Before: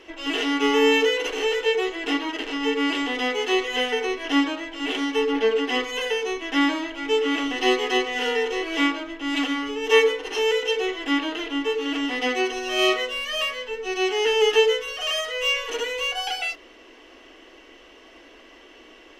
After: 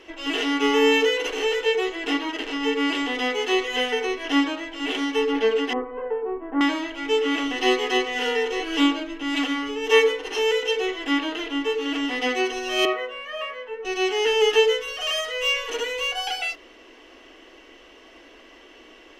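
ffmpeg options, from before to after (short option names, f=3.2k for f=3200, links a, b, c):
-filter_complex "[0:a]asettb=1/sr,asplit=3[a][b][c];[a]atrim=end=5.734[d];[b]atrim=start=5.73:end=6.61,asetpts=PTS-STARTPTS,afade=t=in:d=0.004:c=qsin,afade=t=out:st=0.876:d=0.004:c=qsin,lowpass=f=1.2k:w=0.5412,lowpass=f=1.2k:w=1.3066[e];[c]atrim=start=6.606[f];[d][e]acrossfade=d=0.004:c1=hsin:c2=qsin[g];[g][f]acrossfade=d=0.004:c1=qsin:c2=hsin,asettb=1/sr,asplit=3[h][i][j];[h]atrim=end=8.594[k];[i]atrim=start=8.59:end=9.23,asetpts=PTS-STARTPTS,afade=t=in:d=0.004:c=qsin,afade=t=out:st=0.636:d=0.004:c=qsin,aecho=1:1:6.8:0.65,atrim=end_sample=28224[l];[j]atrim=start=9.226[m];[k][l]acrossfade=d=0.004:c1=hsin:c2=qsin[n];[n][m]acrossfade=d=0.004:c1=qsin:c2=hsin,asettb=1/sr,asplit=3[o][p][q];[o]atrim=end=12.854[r];[p]atrim=start=12.85:end=13.85,asetpts=PTS-STARTPTS,afade=t=in:d=0.004:c=qsin,afade=t=out:st=0.996:d=0.004:c=qsin,acrossover=split=330 2200:gain=0.2 1 0.1[s][t][u];[s][t][u]amix=inputs=3:normalize=0[v];[q]atrim=start=13.846[w];[r][v]acrossfade=d=0.004:c1=hsin:c2=qsin[x];[x][w]acrossfade=d=0.004:c1=qsin:c2=hsin"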